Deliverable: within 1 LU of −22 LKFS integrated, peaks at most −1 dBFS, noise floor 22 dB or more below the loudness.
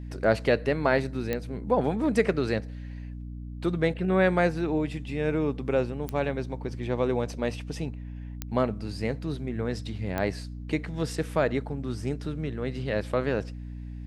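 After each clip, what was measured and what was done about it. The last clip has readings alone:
number of clicks 4; mains hum 60 Hz; hum harmonics up to 300 Hz; level of the hum −35 dBFS; integrated loudness −28.5 LKFS; sample peak −9.5 dBFS; target loudness −22.0 LKFS
→ click removal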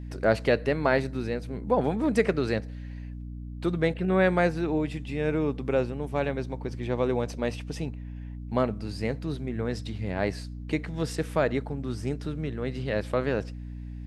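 number of clicks 0; mains hum 60 Hz; hum harmonics up to 300 Hz; level of the hum −35 dBFS
→ mains-hum notches 60/120/180/240/300 Hz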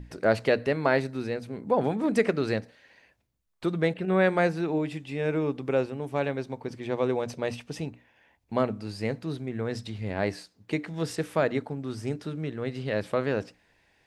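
mains hum none found; integrated loudness −29.0 LKFS; sample peak −9.5 dBFS; target loudness −22.0 LKFS
→ level +7 dB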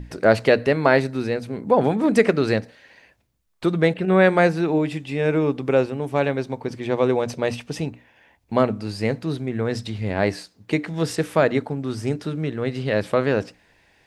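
integrated loudness −22.0 LKFS; sample peak −2.5 dBFS; background noise floor −61 dBFS

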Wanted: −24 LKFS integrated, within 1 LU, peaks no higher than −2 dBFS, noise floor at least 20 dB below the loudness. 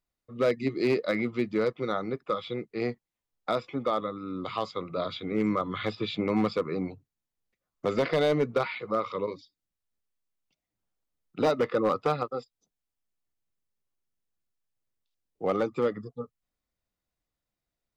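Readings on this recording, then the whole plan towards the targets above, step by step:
share of clipped samples 0.5%; peaks flattened at −18.0 dBFS; integrated loudness −29.5 LKFS; sample peak −18.0 dBFS; target loudness −24.0 LKFS
→ clipped peaks rebuilt −18 dBFS
level +5.5 dB

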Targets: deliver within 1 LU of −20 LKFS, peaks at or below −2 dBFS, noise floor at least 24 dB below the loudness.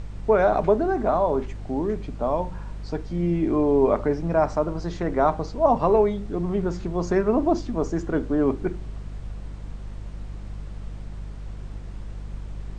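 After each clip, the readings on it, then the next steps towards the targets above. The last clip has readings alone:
mains hum 50 Hz; hum harmonics up to 200 Hz; level of the hum −32 dBFS; background noise floor −37 dBFS; target noise floor −48 dBFS; integrated loudness −23.5 LKFS; sample peak −7.0 dBFS; target loudness −20.0 LKFS
→ hum removal 50 Hz, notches 4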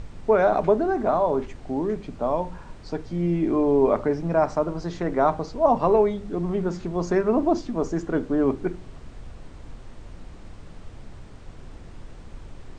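mains hum none found; background noise floor −43 dBFS; target noise floor −48 dBFS
→ noise reduction from a noise print 6 dB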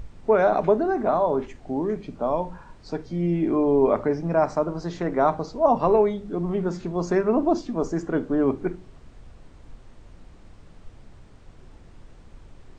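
background noise floor −49 dBFS; integrated loudness −23.5 LKFS; sample peak −8.0 dBFS; target loudness −20.0 LKFS
→ level +3.5 dB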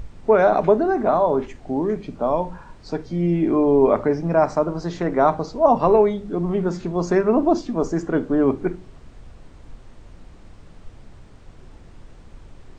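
integrated loudness −20.0 LKFS; sample peak −4.5 dBFS; background noise floor −46 dBFS

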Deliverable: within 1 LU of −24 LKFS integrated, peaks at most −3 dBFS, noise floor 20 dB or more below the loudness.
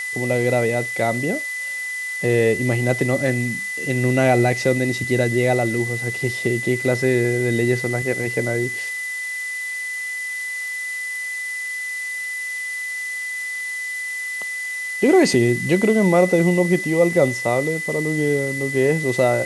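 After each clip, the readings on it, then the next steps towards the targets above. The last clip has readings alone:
interfering tone 2,000 Hz; level of the tone −25 dBFS; background noise floor −28 dBFS; target noise floor −41 dBFS; integrated loudness −20.5 LKFS; sample peak −4.5 dBFS; target loudness −24.0 LKFS
→ notch filter 2,000 Hz, Q 30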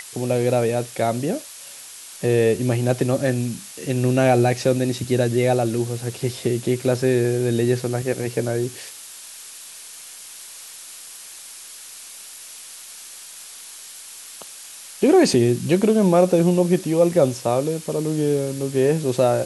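interfering tone none found; background noise floor −40 dBFS; target noise floor −41 dBFS
→ noise reduction from a noise print 6 dB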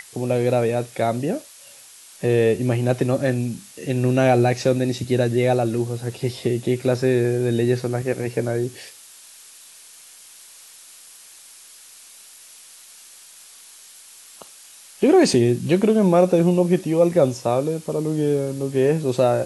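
background noise floor −46 dBFS; integrated loudness −20.5 LKFS; sample peak −4.5 dBFS; target loudness −24.0 LKFS
→ level −3.5 dB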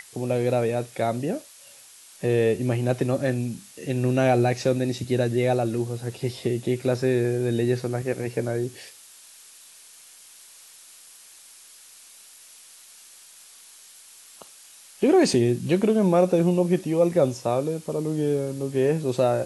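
integrated loudness −24.0 LKFS; sample peak −8.0 dBFS; background noise floor −49 dBFS

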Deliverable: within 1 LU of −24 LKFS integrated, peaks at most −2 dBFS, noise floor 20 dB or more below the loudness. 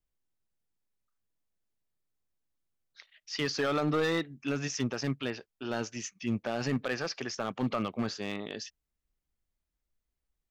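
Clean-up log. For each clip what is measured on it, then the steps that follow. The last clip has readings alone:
share of clipped samples 0.9%; peaks flattened at −23.0 dBFS; integrated loudness −33.0 LKFS; sample peak −23.0 dBFS; target loudness −24.0 LKFS
→ clipped peaks rebuilt −23 dBFS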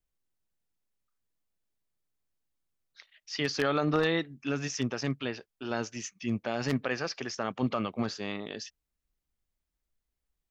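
share of clipped samples 0.0%; integrated loudness −32.0 LKFS; sample peak −14.0 dBFS; target loudness −24.0 LKFS
→ level +8 dB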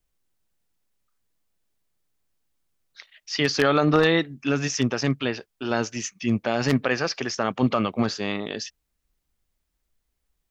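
integrated loudness −24.0 LKFS; sample peak −6.0 dBFS; background noise floor −78 dBFS

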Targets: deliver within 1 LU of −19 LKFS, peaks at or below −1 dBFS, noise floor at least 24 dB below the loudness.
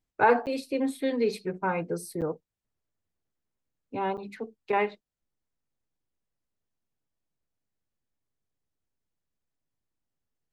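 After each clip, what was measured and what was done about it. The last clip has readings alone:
number of dropouts 3; longest dropout 8.3 ms; integrated loudness −29.0 LKFS; sample peak −8.5 dBFS; target loudness −19.0 LKFS
→ repair the gap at 0:00.46/0:02.21/0:04.17, 8.3 ms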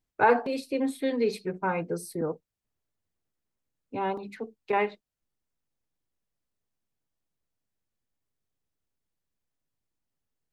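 number of dropouts 0; integrated loudness −29.0 LKFS; sample peak −8.5 dBFS; target loudness −19.0 LKFS
→ level +10 dB
brickwall limiter −1 dBFS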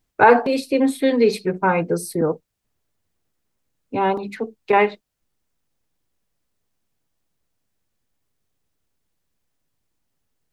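integrated loudness −19.5 LKFS; sample peak −1.0 dBFS; background noise floor −75 dBFS

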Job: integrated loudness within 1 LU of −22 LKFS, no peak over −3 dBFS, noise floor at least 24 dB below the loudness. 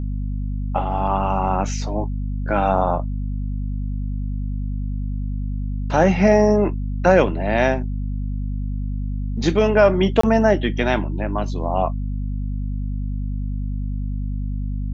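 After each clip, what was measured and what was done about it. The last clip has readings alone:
number of dropouts 1; longest dropout 24 ms; mains hum 50 Hz; hum harmonics up to 250 Hz; level of the hum −22 dBFS; integrated loudness −21.5 LKFS; sample peak −2.5 dBFS; target loudness −22.0 LKFS
→ repair the gap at 0:10.21, 24 ms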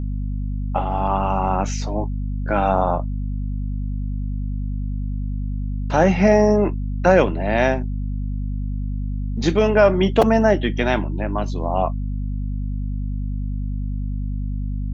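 number of dropouts 0; mains hum 50 Hz; hum harmonics up to 250 Hz; level of the hum −22 dBFS
→ hum removal 50 Hz, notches 5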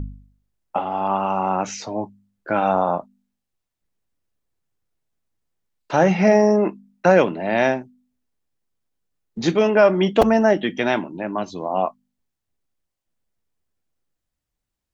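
mains hum none found; integrated loudness −20.0 LKFS; sample peak −2.0 dBFS; target loudness −22.0 LKFS
→ level −2 dB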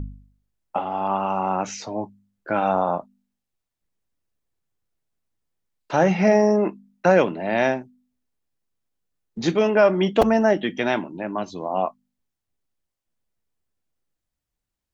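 integrated loudness −22.0 LKFS; sample peak −4.0 dBFS; background noise floor −84 dBFS

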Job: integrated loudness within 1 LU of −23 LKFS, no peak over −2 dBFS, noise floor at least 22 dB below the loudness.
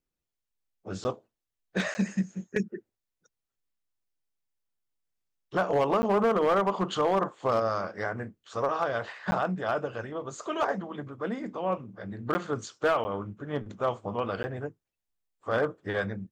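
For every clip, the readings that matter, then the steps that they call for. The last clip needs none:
share of clipped samples 0.5%; peaks flattened at −18.5 dBFS; number of dropouts 7; longest dropout 10 ms; integrated loudness −30.0 LKFS; sample peak −18.5 dBFS; target loudness −23.0 LKFS
→ clipped peaks rebuilt −18.5 dBFS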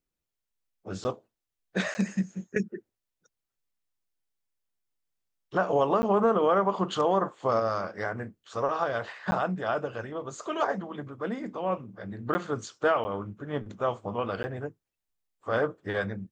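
share of clipped samples 0.0%; number of dropouts 7; longest dropout 10 ms
→ repair the gap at 0:01.04/0:01.94/0:06.02/0:09.31/0:12.34/0:13.04/0:14.43, 10 ms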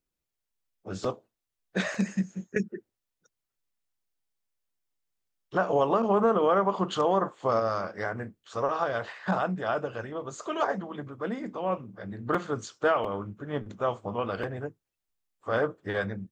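number of dropouts 0; integrated loudness −29.5 LKFS; sample peak −13.0 dBFS; target loudness −23.0 LKFS
→ level +6.5 dB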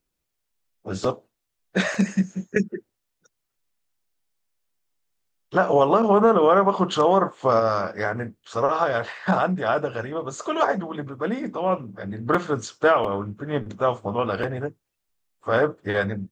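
integrated loudness −23.0 LKFS; sample peak −6.5 dBFS; background noise floor −79 dBFS

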